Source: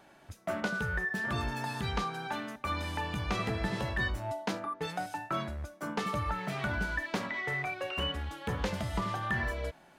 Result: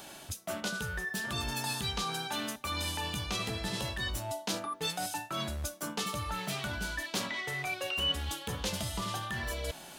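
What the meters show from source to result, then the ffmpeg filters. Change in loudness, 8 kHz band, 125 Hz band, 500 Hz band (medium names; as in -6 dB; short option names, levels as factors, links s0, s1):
0.0 dB, +12.0 dB, -3.0 dB, -2.5 dB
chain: -af "areverse,acompressor=threshold=0.00708:ratio=5,areverse,aexciter=amount=3.2:drive=6.4:freq=2800,volume=2.51"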